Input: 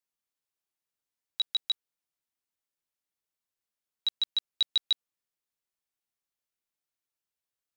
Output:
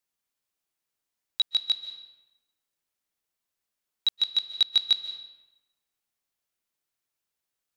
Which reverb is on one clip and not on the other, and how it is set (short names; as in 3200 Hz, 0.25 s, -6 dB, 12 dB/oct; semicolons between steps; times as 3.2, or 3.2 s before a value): digital reverb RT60 1 s, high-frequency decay 0.8×, pre-delay 0.11 s, DRR 10.5 dB; gain +4.5 dB